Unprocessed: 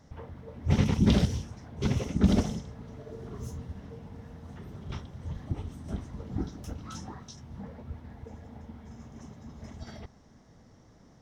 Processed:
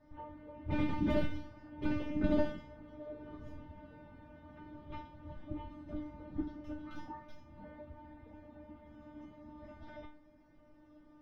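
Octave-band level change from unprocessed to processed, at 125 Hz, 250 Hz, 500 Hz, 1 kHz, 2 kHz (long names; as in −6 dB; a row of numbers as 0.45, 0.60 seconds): −14.5, −7.0, −2.5, −2.5, −3.5 decibels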